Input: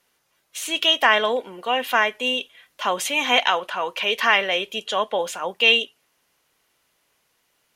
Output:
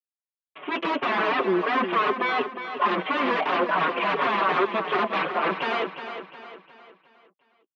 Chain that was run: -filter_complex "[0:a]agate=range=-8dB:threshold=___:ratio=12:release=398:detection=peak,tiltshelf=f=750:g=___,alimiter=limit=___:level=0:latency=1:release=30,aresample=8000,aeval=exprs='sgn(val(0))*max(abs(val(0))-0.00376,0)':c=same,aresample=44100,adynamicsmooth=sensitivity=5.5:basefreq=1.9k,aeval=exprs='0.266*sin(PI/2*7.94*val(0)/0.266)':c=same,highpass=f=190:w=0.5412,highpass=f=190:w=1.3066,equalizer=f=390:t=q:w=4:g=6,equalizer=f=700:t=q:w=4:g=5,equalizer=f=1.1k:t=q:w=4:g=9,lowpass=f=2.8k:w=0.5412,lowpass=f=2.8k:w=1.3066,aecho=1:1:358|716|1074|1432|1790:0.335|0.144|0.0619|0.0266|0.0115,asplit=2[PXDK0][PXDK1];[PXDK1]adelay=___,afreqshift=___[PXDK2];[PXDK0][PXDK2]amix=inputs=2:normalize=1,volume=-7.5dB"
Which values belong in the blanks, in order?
-44dB, 7.5, -11.5dB, 5.2, -2.8